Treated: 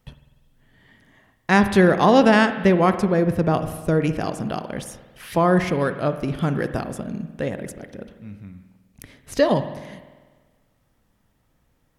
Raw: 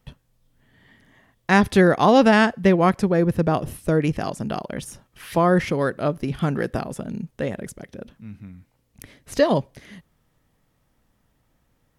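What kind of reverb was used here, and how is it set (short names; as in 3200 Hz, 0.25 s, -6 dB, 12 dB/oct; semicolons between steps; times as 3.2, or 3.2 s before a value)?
spring tank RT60 1.4 s, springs 49 ms, chirp 50 ms, DRR 10 dB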